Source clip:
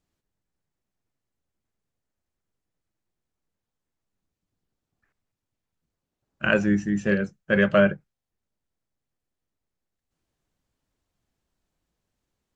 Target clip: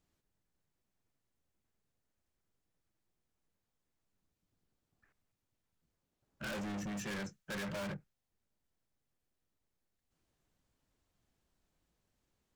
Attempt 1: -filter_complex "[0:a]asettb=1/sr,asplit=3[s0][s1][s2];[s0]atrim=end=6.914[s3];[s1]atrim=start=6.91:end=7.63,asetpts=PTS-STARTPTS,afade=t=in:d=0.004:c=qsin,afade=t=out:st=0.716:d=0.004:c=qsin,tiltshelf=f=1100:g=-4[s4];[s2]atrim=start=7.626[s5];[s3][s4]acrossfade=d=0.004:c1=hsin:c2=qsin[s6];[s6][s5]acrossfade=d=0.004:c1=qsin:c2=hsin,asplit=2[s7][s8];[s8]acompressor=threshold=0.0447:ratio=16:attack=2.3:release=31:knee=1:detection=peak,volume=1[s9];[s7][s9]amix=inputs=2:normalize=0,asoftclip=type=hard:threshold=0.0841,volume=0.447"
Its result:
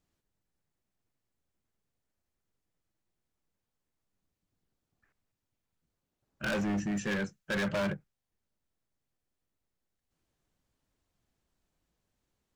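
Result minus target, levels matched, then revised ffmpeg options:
hard clipper: distortion -4 dB
-filter_complex "[0:a]asettb=1/sr,asplit=3[s0][s1][s2];[s0]atrim=end=6.914[s3];[s1]atrim=start=6.91:end=7.63,asetpts=PTS-STARTPTS,afade=t=in:d=0.004:c=qsin,afade=t=out:st=0.716:d=0.004:c=qsin,tiltshelf=f=1100:g=-4[s4];[s2]atrim=start=7.626[s5];[s3][s4]acrossfade=d=0.004:c1=hsin:c2=qsin[s6];[s6][s5]acrossfade=d=0.004:c1=qsin:c2=hsin,asplit=2[s7][s8];[s8]acompressor=threshold=0.0447:ratio=16:attack=2.3:release=31:knee=1:detection=peak,volume=1[s9];[s7][s9]amix=inputs=2:normalize=0,asoftclip=type=hard:threshold=0.0251,volume=0.447"

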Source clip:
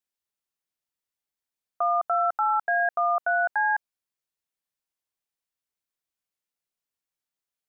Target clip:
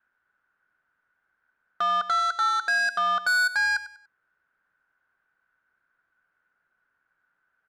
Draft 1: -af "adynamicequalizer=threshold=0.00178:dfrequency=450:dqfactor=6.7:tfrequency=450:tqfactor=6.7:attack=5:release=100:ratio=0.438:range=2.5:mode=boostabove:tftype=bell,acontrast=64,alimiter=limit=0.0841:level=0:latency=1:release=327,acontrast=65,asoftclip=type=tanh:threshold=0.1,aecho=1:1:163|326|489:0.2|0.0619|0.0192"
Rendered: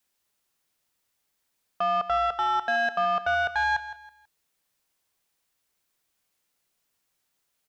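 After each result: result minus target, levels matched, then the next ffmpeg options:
echo 66 ms late; 2 kHz band -2.5 dB
-af "adynamicequalizer=threshold=0.00178:dfrequency=450:dqfactor=6.7:tfrequency=450:tqfactor=6.7:attack=5:release=100:ratio=0.438:range=2.5:mode=boostabove:tftype=bell,acontrast=64,alimiter=limit=0.0841:level=0:latency=1:release=327,acontrast=65,asoftclip=type=tanh:threshold=0.1,aecho=1:1:97|194|291:0.2|0.0619|0.0192"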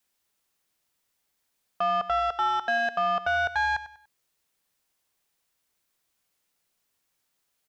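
2 kHz band -2.5 dB
-af "adynamicequalizer=threshold=0.00178:dfrequency=450:dqfactor=6.7:tfrequency=450:tqfactor=6.7:attack=5:release=100:ratio=0.438:range=2.5:mode=boostabove:tftype=bell,lowpass=f=1500:t=q:w=16,acontrast=64,alimiter=limit=0.0841:level=0:latency=1:release=327,acontrast=65,asoftclip=type=tanh:threshold=0.1,aecho=1:1:97|194|291:0.2|0.0619|0.0192"

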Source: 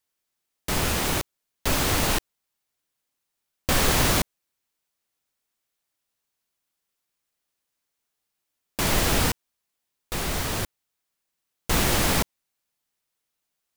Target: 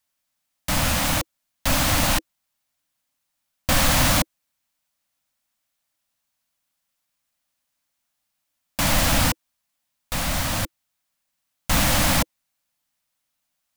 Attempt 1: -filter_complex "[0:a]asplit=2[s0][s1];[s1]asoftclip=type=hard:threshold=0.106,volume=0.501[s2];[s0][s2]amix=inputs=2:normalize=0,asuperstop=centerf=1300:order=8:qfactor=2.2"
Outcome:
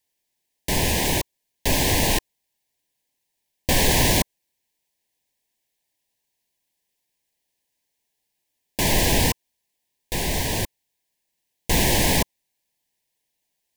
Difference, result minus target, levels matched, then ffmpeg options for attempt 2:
500 Hz band +3.0 dB
-filter_complex "[0:a]asplit=2[s0][s1];[s1]asoftclip=type=hard:threshold=0.106,volume=0.501[s2];[s0][s2]amix=inputs=2:normalize=0,asuperstop=centerf=400:order=8:qfactor=2.2"

